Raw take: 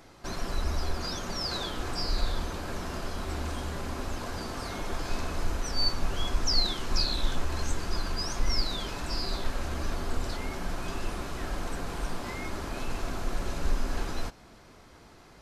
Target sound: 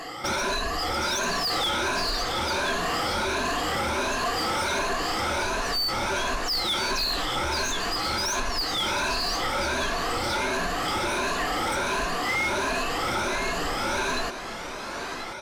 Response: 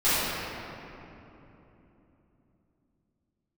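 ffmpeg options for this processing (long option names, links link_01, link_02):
-filter_complex "[0:a]afftfilt=real='re*pow(10,18/40*sin(2*PI*(1.5*log(max(b,1)*sr/1024/100)/log(2)-(1.4)*(pts-256)/sr)))':imag='im*pow(10,18/40*sin(2*PI*(1.5*log(max(b,1)*sr/1024/100)/log(2)-(1.4)*(pts-256)/sr)))':win_size=1024:overlap=0.75,acompressor=threshold=-31dB:ratio=2,aecho=1:1:1032:0.237,asplit=2[link_01][link_02];[link_02]highpass=frequency=720:poles=1,volume=24dB,asoftclip=type=tanh:threshold=-17.5dB[link_03];[link_01][link_03]amix=inputs=2:normalize=0,lowpass=frequency=4400:poles=1,volume=-6dB"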